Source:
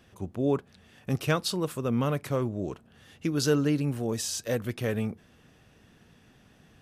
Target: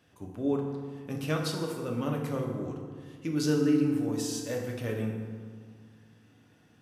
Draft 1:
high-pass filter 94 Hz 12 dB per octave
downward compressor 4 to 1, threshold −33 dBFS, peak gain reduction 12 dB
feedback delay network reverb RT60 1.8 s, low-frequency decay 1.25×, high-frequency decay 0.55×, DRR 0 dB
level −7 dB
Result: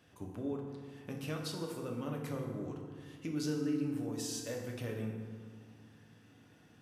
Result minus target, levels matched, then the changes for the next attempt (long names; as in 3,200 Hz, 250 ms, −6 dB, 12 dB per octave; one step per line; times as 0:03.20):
downward compressor: peak gain reduction +12 dB
remove: downward compressor 4 to 1, threshold −33 dBFS, peak gain reduction 12 dB